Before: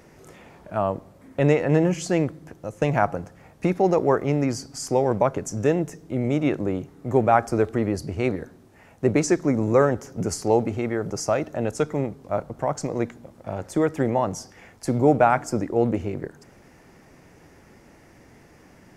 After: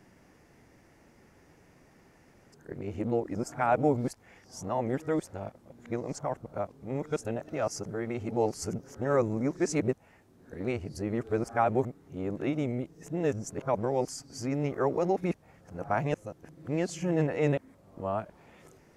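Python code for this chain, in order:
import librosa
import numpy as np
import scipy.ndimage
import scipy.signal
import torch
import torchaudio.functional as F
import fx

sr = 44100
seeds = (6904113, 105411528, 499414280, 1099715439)

y = x[::-1].copy()
y = y * 10.0 ** (-8.0 / 20.0)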